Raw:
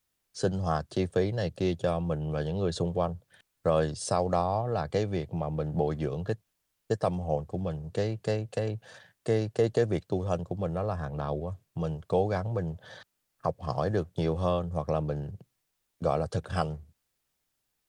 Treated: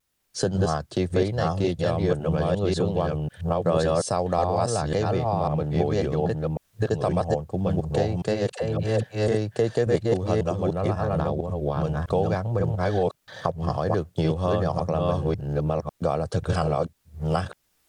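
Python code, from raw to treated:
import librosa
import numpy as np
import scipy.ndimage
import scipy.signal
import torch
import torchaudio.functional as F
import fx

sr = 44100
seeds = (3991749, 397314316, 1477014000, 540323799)

y = fx.reverse_delay(x, sr, ms=548, wet_db=-0.5)
y = fx.recorder_agc(y, sr, target_db=-16.5, rise_db_per_s=17.0, max_gain_db=30)
y = fx.vibrato(y, sr, rate_hz=0.83, depth_cents=29.0)
y = fx.dispersion(y, sr, late='lows', ms=83.0, hz=400.0, at=(8.52, 9.28))
y = y * librosa.db_to_amplitude(2.0)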